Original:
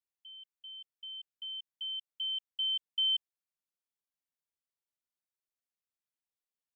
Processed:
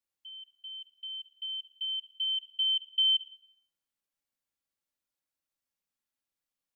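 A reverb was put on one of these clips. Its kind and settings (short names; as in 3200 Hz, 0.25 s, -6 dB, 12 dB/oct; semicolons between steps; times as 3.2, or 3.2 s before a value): shoebox room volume 2900 m³, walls furnished, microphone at 2.3 m; gain +1.5 dB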